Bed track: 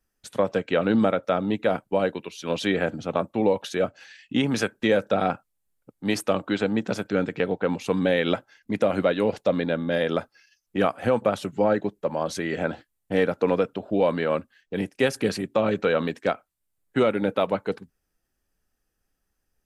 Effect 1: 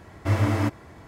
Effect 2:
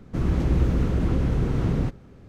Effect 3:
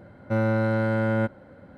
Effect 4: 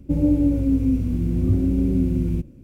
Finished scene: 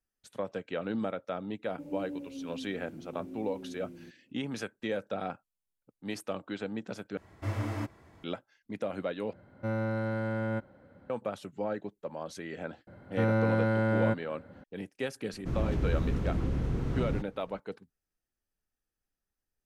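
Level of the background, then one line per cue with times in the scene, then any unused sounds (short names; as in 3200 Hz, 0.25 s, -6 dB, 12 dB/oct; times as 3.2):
bed track -12.5 dB
1.69 add 4 -15.5 dB + HPF 340 Hz
7.17 replace with 1 -11 dB
9.33 replace with 3 -8.5 dB
12.87 add 3 -3.5 dB
15.32 add 2 -8 dB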